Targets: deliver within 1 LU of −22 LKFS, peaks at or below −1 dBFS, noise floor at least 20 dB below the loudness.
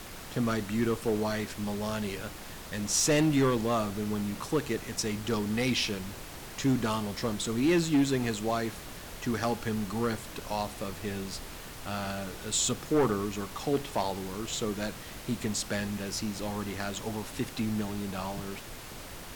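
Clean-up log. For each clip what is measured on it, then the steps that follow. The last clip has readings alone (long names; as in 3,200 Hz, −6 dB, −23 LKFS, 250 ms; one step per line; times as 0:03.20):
share of clipped samples 0.6%; peaks flattened at −19.5 dBFS; background noise floor −44 dBFS; target noise floor −51 dBFS; integrated loudness −31.0 LKFS; sample peak −19.5 dBFS; target loudness −22.0 LKFS
→ clipped peaks rebuilt −19.5 dBFS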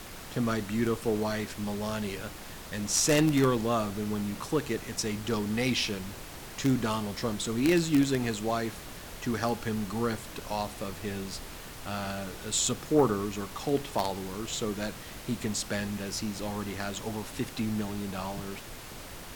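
share of clipped samples 0.0%; background noise floor −44 dBFS; target noise floor −51 dBFS
→ noise reduction from a noise print 7 dB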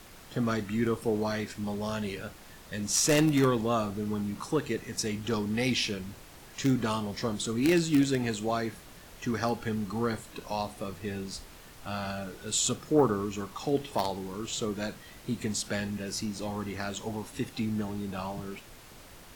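background noise floor −50 dBFS; target noise floor −51 dBFS
→ noise reduction from a noise print 6 dB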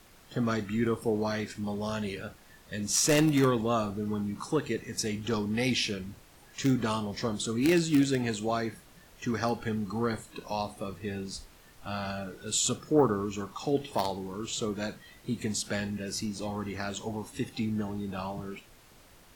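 background noise floor −56 dBFS; integrated loudness −30.5 LKFS; sample peak −10.5 dBFS; target loudness −22.0 LKFS
→ level +8.5 dB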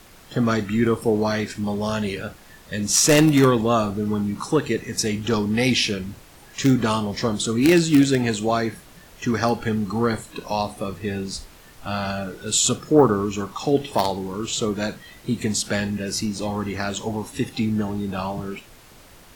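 integrated loudness −22.0 LKFS; sample peak −2.0 dBFS; background noise floor −48 dBFS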